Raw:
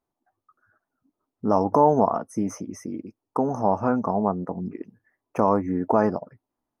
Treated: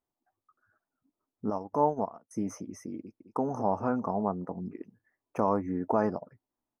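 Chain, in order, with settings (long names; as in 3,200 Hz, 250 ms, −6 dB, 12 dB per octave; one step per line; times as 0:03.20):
0:01.50–0:02.31: expander for the loud parts 2.5 to 1, over −30 dBFS
0:02.99–0:03.41: delay throw 210 ms, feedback 45%, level −9.5 dB
level −6.5 dB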